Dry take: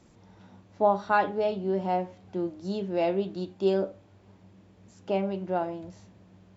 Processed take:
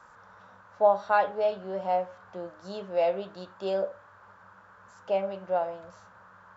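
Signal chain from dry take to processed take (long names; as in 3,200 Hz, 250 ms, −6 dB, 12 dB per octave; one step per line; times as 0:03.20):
low shelf with overshoot 420 Hz −7 dB, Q 3
noise in a band 850–1,600 Hz −53 dBFS
level −2 dB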